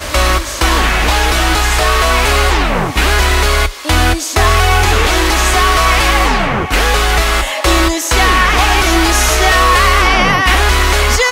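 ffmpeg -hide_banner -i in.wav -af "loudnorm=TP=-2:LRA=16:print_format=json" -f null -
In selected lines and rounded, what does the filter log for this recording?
"input_i" : "-10.9",
"input_tp" : "-1.8",
"input_lra" : "2.1",
"input_thresh" : "-20.9",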